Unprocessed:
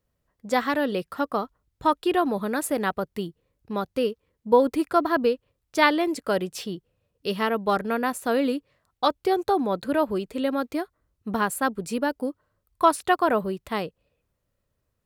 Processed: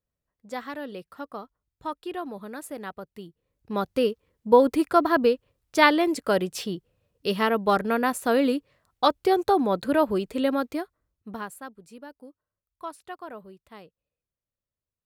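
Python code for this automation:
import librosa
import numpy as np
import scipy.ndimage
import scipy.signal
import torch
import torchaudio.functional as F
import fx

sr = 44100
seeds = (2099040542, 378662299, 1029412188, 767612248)

y = fx.gain(x, sr, db=fx.line((3.23, -11.0), (3.81, 1.5), (10.51, 1.5), (11.41, -10.5), (11.75, -18.0)))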